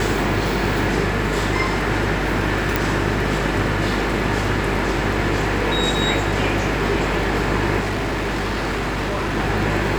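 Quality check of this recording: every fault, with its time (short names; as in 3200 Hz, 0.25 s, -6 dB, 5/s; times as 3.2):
buzz 50 Hz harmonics 15 -25 dBFS
crackle 13/s -24 dBFS
2.76 pop
7.79–9.38 clipped -19.5 dBFS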